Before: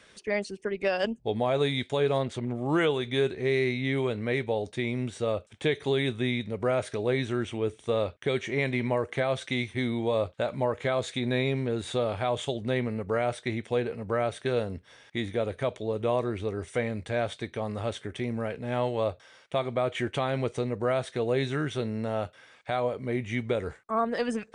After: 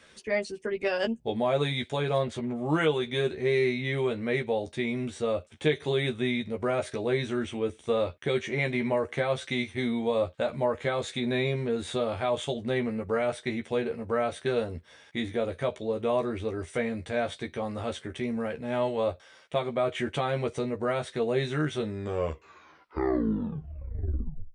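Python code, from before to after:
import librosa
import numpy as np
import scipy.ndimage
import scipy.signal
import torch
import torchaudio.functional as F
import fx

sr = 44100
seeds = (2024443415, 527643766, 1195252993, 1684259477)

y = fx.tape_stop_end(x, sr, length_s=2.83)
y = fx.doubler(y, sr, ms=13.0, db=-4.0)
y = y * librosa.db_to_amplitude(-1.5)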